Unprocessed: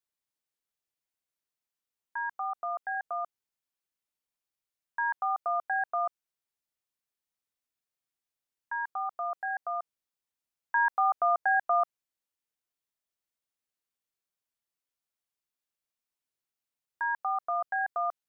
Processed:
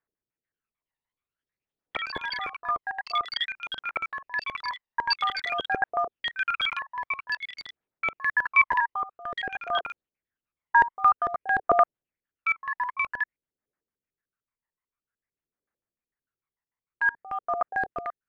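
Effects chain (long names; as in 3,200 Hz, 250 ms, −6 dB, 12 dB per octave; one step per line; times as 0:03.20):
adaptive Wiener filter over 9 samples
auto-filter low-pass square 6.7 Hz 440–1,800 Hz
delay with pitch and tempo change per echo 435 ms, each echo +6 semitones, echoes 3
phase shifter 0.51 Hz, delay 1.1 ms, feedback 61%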